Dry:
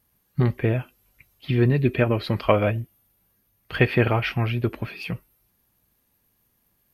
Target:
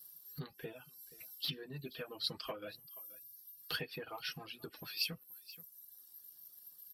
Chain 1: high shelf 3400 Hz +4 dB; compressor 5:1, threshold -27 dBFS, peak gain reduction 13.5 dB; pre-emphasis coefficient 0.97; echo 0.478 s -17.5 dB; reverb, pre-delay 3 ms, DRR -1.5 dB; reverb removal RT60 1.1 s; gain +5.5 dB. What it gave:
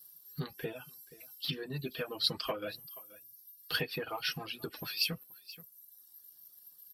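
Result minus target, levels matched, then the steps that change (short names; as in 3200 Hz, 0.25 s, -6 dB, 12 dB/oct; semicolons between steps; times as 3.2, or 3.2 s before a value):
compressor: peak gain reduction -7 dB
change: compressor 5:1, threshold -36 dBFS, peak gain reduction 21 dB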